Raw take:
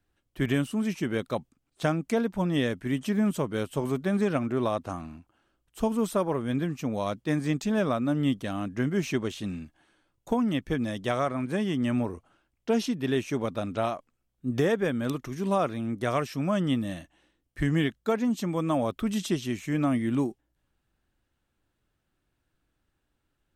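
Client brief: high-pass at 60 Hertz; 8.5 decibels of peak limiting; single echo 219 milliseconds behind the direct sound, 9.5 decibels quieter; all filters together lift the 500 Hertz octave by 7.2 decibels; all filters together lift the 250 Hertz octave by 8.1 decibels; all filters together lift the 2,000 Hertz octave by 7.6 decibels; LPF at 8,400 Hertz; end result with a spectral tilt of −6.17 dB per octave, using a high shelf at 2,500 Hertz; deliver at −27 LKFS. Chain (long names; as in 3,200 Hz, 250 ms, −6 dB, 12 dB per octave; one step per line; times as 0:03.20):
high-pass filter 60 Hz
low-pass filter 8,400 Hz
parametric band 250 Hz +8 dB
parametric band 500 Hz +6 dB
parametric band 2,000 Hz +7.5 dB
high-shelf EQ 2,500 Hz +3 dB
brickwall limiter −13.5 dBFS
single-tap delay 219 ms −9.5 dB
level −3.5 dB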